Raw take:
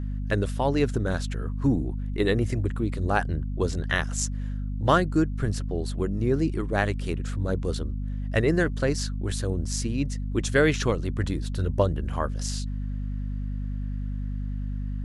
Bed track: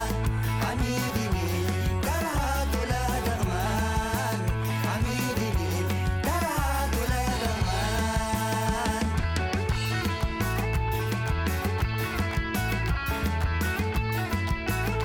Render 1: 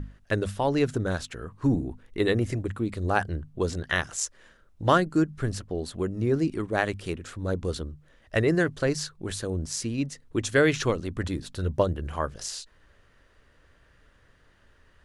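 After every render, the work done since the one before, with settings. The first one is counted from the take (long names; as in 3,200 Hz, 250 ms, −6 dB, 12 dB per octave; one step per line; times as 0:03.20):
mains-hum notches 50/100/150/200/250 Hz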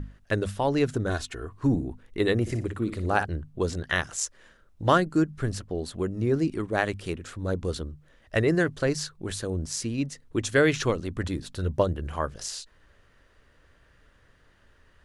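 0:01.09–0:01.59: comb filter 2.8 ms
0:02.41–0:03.25: flutter between parallel walls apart 10.2 metres, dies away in 0.35 s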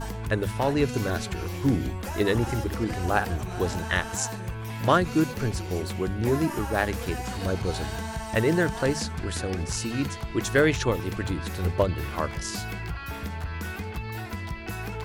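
mix in bed track −6.5 dB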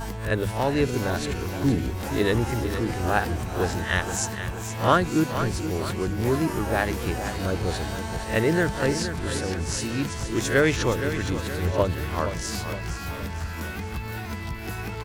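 peak hold with a rise ahead of every peak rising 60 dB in 0.32 s
repeating echo 468 ms, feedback 50%, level −10 dB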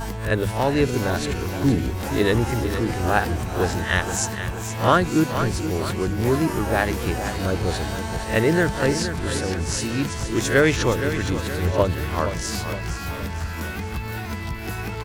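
level +3 dB
brickwall limiter −3 dBFS, peak gain reduction 1.5 dB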